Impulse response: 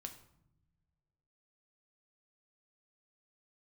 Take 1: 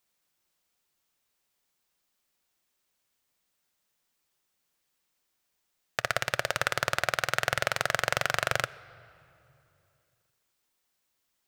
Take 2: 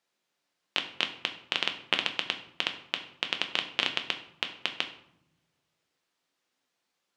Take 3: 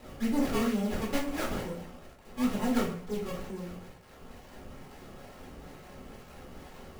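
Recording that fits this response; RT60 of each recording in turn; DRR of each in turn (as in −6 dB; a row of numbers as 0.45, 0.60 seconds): 2; 2.9 s, non-exponential decay, 0.50 s; 15.5, 5.0, −4.5 decibels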